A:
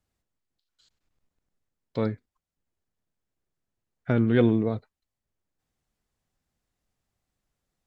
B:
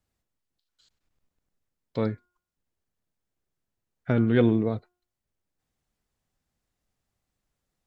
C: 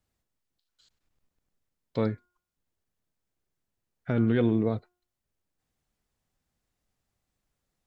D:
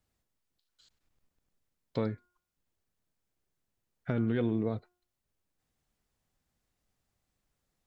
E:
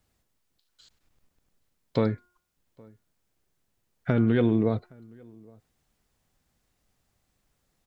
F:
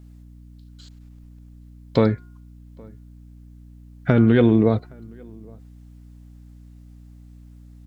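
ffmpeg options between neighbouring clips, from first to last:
ffmpeg -i in.wav -af "bandreject=frequency=357:width_type=h:width=4,bandreject=frequency=714:width_type=h:width=4,bandreject=frequency=1071:width_type=h:width=4,bandreject=frequency=1428:width_type=h:width=4" out.wav
ffmpeg -i in.wav -af "alimiter=limit=-14.5dB:level=0:latency=1:release=161" out.wav
ffmpeg -i in.wav -af "acompressor=threshold=-30dB:ratio=2" out.wav
ffmpeg -i in.wav -filter_complex "[0:a]asplit=2[link_01][link_02];[link_02]adelay=816.3,volume=-27dB,highshelf=frequency=4000:gain=-18.4[link_03];[link_01][link_03]amix=inputs=2:normalize=0,volume=7.5dB" out.wav
ffmpeg -i in.wav -af "aeval=exprs='val(0)+0.00316*(sin(2*PI*60*n/s)+sin(2*PI*2*60*n/s)/2+sin(2*PI*3*60*n/s)/3+sin(2*PI*4*60*n/s)/4+sin(2*PI*5*60*n/s)/5)':channel_layout=same,volume=7dB" out.wav

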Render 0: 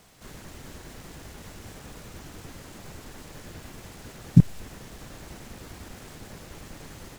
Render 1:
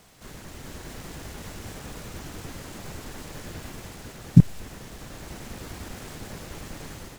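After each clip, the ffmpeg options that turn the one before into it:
ffmpeg -i in.wav -af "dynaudnorm=framelen=460:gausssize=3:maxgain=3.5dB,volume=1dB" out.wav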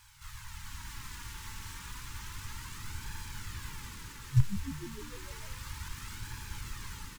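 ffmpeg -i in.wav -filter_complex "[0:a]afftfilt=real='re*(1-between(b*sr/4096,130,830))':imag='im*(1-between(b*sr/4096,130,830))':win_size=4096:overlap=0.75,flanger=delay=1.2:depth=3.3:regen=40:speed=0.31:shape=sinusoidal,asplit=8[link_01][link_02][link_03][link_04][link_05][link_06][link_07][link_08];[link_02]adelay=151,afreqshift=74,volume=-14dB[link_09];[link_03]adelay=302,afreqshift=148,volume=-18.2dB[link_10];[link_04]adelay=453,afreqshift=222,volume=-22.3dB[link_11];[link_05]adelay=604,afreqshift=296,volume=-26.5dB[link_12];[link_06]adelay=755,afreqshift=370,volume=-30.6dB[link_13];[link_07]adelay=906,afreqshift=444,volume=-34.8dB[link_14];[link_08]adelay=1057,afreqshift=518,volume=-38.9dB[link_15];[link_01][link_09][link_10][link_11][link_12][link_13][link_14][link_15]amix=inputs=8:normalize=0,volume=1.5dB" out.wav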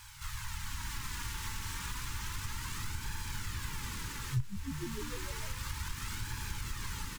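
ffmpeg -i in.wav -af "acompressor=threshold=-42dB:ratio=3,volume=7dB" out.wav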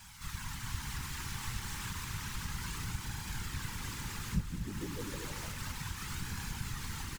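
ffmpeg -i in.wav -af "afftfilt=real='hypot(re,im)*cos(2*PI*random(0))':imag='hypot(re,im)*sin(2*PI*random(1))':win_size=512:overlap=0.75,aecho=1:1:235:0.355,volume=5dB" out.wav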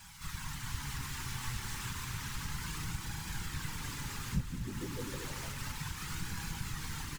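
ffmpeg -i in.wav -af "flanger=delay=6.1:depth=1.9:regen=65:speed=0.31:shape=sinusoidal,volume=4.5dB" out.wav

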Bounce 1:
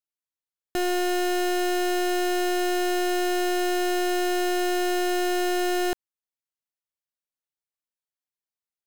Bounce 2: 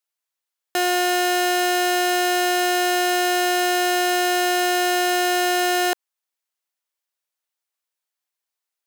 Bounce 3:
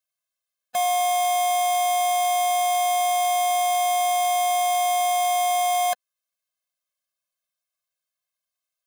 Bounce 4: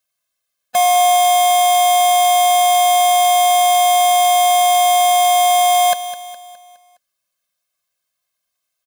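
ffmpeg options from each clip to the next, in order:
ffmpeg -i in.wav -af "highpass=530,volume=8.5dB" out.wav
ffmpeg -i in.wav -af "afftfilt=real='re*eq(mod(floor(b*sr/1024/250),2),0)':imag='im*eq(mod(floor(b*sr/1024/250),2),0)':win_size=1024:overlap=0.75,volume=2dB" out.wav
ffmpeg -i in.wav -af "aecho=1:1:207|414|621|828|1035:0.237|0.111|0.0524|0.0246|0.0116,volume=9dB" out.wav

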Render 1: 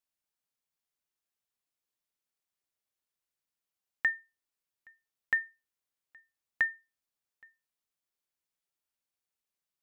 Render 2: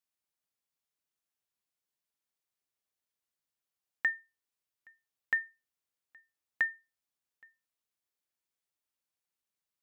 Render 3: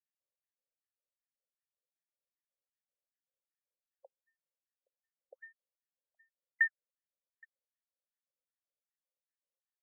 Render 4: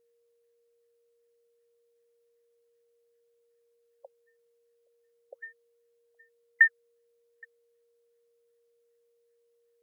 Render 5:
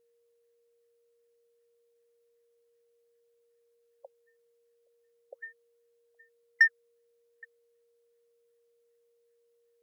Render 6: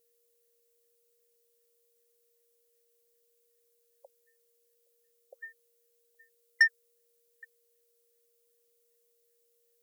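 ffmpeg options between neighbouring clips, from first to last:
ffmpeg -i in.wav -af "highpass=frequency=40:width=0.5412,highpass=frequency=40:width=1.3066,volume=-1.5dB" out.wav
ffmpeg -i in.wav -filter_complex "[0:a]asplit=3[link_01][link_02][link_03];[link_01]bandpass=frequency=530:width_type=q:width=8,volume=0dB[link_04];[link_02]bandpass=frequency=1840:width_type=q:width=8,volume=-6dB[link_05];[link_03]bandpass=frequency=2480:width_type=q:width=8,volume=-9dB[link_06];[link_04][link_05][link_06]amix=inputs=3:normalize=0,afftfilt=real='re*between(b*sr/1024,470*pow(1500/470,0.5+0.5*sin(2*PI*2.6*pts/sr))/1.41,470*pow(1500/470,0.5+0.5*sin(2*PI*2.6*pts/sr))*1.41)':imag='im*between(b*sr/1024,470*pow(1500/470,0.5+0.5*sin(2*PI*2.6*pts/sr))/1.41,470*pow(1500/470,0.5+0.5*sin(2*PI*2.6*pts/sr))*1.41)':win_size=1024:overlap=0.75,volume=7.5dB" out.wav
ffmpeg -i in.wav -af "aeval=exprs='val(0)+0.000141*sin(2*PI*470*n/s)':channel_layout=same,volume=9dB" out.wav
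ffmpeg -i in.wav -af "asoftclip=type=tanh:threshold=-11.5dB" out.wav
ffmpeg -i in.wav -af "crystalizer=i=5.5:c=0,volume=-6.5dB" out.wav

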